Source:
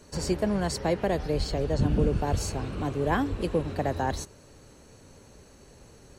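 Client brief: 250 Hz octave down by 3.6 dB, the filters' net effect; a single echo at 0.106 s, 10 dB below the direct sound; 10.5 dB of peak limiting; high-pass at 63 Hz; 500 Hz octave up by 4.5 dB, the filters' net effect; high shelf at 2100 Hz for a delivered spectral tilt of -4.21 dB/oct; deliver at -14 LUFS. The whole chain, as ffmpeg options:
-af "highpass=63,equalizer=f=250:t=o:g=-8,equalizer=f=500:t=o:g=7,highshelf=f=2.1k:g=7,alimiter=limit=-20dB:level=0:latency=1,aecho=1:1:106:0.316,volume=16dB"

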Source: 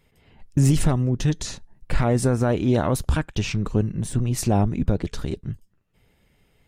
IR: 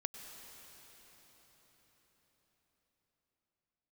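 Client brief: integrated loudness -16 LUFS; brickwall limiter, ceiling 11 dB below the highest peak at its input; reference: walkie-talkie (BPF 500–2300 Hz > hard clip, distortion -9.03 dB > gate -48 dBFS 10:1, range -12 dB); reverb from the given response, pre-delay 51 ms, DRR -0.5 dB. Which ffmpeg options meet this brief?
-filter_complex "[0:a]alimiter=limit=-19.5dB:level=0:latency=1,asplit=2[a][b];[1:a]atrim=start_sample=2205,adelay=51[c];[b][c]afir=irnorm=-1:irlink=0,volume=1.5dB[d];[a][d]amix=inputs=2:normalize=0,highpass=500,lowpass=2.3k,asoftclip=type=hard:threshold=-34dB,agate=range=-12dB:threshold=-48dB:ratio=10,volume=23.5dB"

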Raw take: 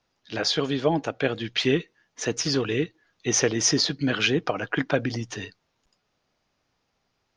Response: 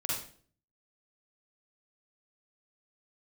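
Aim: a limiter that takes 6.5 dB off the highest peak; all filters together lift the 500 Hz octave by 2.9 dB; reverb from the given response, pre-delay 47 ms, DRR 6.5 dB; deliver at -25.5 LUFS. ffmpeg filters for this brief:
-filter_complex "[0:a]equalizer=f=500:t=o:g=3.5,alimiter=limit=-13dB:level=0:latency=1,asplit=2[a][b];[1:a]atrim=start_sample=2205,adelay=47[c];[b][c]afir=irnorm=-1:irlink=0,volume=-11.5dB[d];[a][d]amix=inputs=2:normalize=0,volume=-0.5dB"

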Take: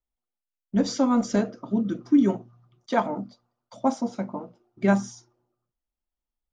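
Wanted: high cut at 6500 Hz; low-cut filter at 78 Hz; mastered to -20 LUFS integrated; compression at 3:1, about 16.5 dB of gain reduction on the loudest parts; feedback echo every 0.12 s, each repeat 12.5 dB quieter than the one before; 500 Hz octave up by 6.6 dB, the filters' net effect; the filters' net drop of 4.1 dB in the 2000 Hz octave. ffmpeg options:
-af "highpass=78,lowpass=6.5k,equalizer=f=500:t=o:g=8.5,equalizer=f=2k:t=o:g=-6.5,acompressor=threshold=-36dB:ratio=3,aecho=1:1:120|240|360:0.237|0.0569|0.0137,volume=17dB"

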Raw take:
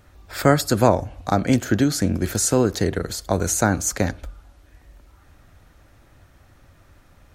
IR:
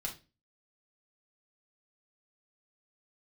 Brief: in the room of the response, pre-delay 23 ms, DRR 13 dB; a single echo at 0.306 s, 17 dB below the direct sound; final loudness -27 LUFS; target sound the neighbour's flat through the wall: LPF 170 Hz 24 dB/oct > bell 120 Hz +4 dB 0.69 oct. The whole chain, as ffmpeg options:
-filter_complex "[0:a]aecho=1:1:306:0.141,asplit=2[a][b];[1:a]atrim=start_sample=2205,adelay=23[c];[b][c]afir=irnorm=-1:irlink=0,volume=-13.5dB[d];[a][d]amix=inputs=2:normalize=0,lowpass=f=170:w=0.5412,lowpass=f=170:w=1.3066,equalizer=f=120:t=o:w=0.69:g=4,volume=-1dB"

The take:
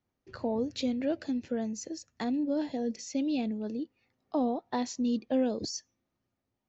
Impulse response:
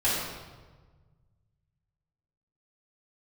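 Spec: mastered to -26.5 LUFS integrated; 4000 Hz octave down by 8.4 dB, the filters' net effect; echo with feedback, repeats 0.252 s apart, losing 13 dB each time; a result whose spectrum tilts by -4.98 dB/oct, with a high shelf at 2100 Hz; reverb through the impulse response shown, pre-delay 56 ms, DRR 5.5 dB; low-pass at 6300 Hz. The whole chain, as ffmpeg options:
-filter_complex "[0:a]lowpass=6.3k,highshelf=f=2.1k:g=-4.5,equalizer=f=4k:t=o:g=-5,aecho=1:1:252|504|756:0.224|0.0493|0.0108,asplit=2[a][b];[1:a]atrim=start_sample=2205,adelay=56[c];[b][c]afir=irnorm=-1:irlink=0,volume=-18dB[d];[a][d]amix=inputs=2:normalize=0,volume=5dB"

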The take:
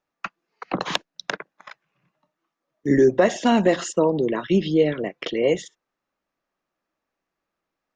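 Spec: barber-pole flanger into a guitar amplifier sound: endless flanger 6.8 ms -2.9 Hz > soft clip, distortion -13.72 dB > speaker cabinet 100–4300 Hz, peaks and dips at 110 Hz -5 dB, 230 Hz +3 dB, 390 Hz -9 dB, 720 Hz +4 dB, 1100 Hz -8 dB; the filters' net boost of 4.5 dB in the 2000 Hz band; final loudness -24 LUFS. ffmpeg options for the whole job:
-filter_complex "[0:a]equalizer=f=2k:t=o:g=6,asplit=2[a][b];[b]adelay=6.8,afreqshift=-2.9[c];[a][c]amix=inputs=2:normalize=1,asoftclip=threshold=-16.5dB,highpass=100,equalizer=f=110:t=q:w=4:g=-5,equalizer=f=230:t=q:w=4:g=3,equalizer=f=390:t=q:w=4:g=-9,equalizer=f=720:t=q:w=4:g=4,equalizer=f=1.1k:t=q:w=4:g=-8,lowpass=f=4.3k:w=0.5412,lowpass=f=4.3k:w=1.3066,volume=5dB"

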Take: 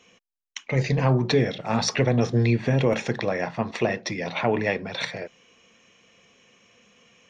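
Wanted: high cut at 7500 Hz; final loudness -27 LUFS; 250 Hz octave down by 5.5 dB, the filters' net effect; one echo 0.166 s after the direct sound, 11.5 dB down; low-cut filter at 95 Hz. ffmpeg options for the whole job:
-af "highpass=95,lowpass=7.5k,equalizer=f=250:t=o:g=-7,aecho=1:1:166:0.266,volume=-0.5dB"

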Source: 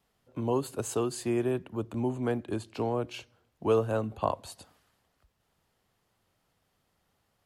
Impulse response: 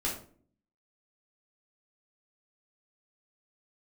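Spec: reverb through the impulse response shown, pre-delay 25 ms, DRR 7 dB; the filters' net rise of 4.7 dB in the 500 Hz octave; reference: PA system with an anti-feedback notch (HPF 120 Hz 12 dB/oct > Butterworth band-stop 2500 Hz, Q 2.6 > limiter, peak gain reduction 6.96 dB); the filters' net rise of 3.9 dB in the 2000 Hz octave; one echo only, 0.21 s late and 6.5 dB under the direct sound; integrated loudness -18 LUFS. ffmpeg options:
-filter_complex "[0:a]equalizer=f=500:t=o:g=5.5,equalizer=f=2k:t=o:g=8,aecho=1:1:210:0.473,asplit=2[a][b];[1:a]atrim=start_sample=2205,adelay=25[c];[b][c]afir=irnorm=-1:irlink=0,volume=-12.5dB[d];[a][d]amix=inputs=2:normalize=0,highpass=120,asuperstop=centerf=2500:order=8:qfactor=2.6,volume=10dB,alimiter=limit=-6.5dB:level=0:latency=1"

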